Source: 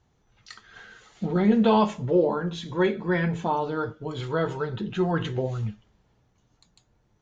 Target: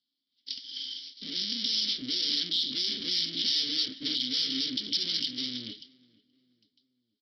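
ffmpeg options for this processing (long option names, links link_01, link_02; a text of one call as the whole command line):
ffmpeg -i in.wav -filter_complex "[0:a]aeval=exprs='(tanh(63.1*val(0)+0.4)-tanh(0.4))/63.1':channel_layout=same,agate=range=-18dB:threshold=-55dB:ratio=16:detection=peak,dynaudnorm=framelen=200:gausssize=17:maxgain=12dB,aresample=11025,aeval=exprs='abs(val(0))':channel_layout=same,aresample=44100,aexciter=amount=13.3:drive=9.6:freq=3800,asplit=3[link_01][link_02][link_03];[link_01]bandpass=frequency=270:width_type=q:width=8,volume=0dB[link_04];[link_02]bandpass=frequency=2290:width_type=q:width=8,volume=-6dB[link_05];[link_03]bandpass=frequency=3010:width_type=q:width=8,volume=-9dB[link_06];[link_04][link_05][link_06]amix=inputs=3:normalize=0,alimiter=level_in=7dB:limit=-24dB:level=0:latency=1:release=287,volume=-7dB,highshelf=frequency=2600:gain=10.5,asplit=2[link_07][link_08];[link_08]adelay=476,lowpass=frequency=1600:poles=1,volume=-23dB,asplit=2[link_09][link_10];[link_10]adelay=476,lowpass=frequency=1600:poles=1,volume=0.46,asplit=2[link_11][link_12];[link_12]adelay=476,lowpass=frequency=1600:poles=1,volume=0.46[link_13];[link_07][link_09][link_11][link_13]amix=inputs=4:normalize=0,volume=6.5dB" out.wav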